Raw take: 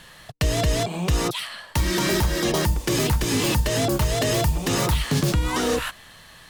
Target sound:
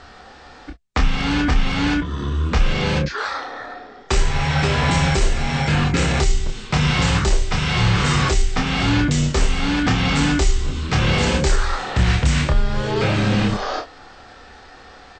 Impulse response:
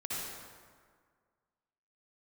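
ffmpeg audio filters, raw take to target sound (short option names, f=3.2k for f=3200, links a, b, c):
-filter_complex "[0:a]bandreject=f=1.6k:w=27,asplit=2[a][b];[b]adelay=12,volume=-6dB[c];[a][c]amix=inputs=2:normalize=0,asetrate=18846,aresample=44100,volume=3.5dB"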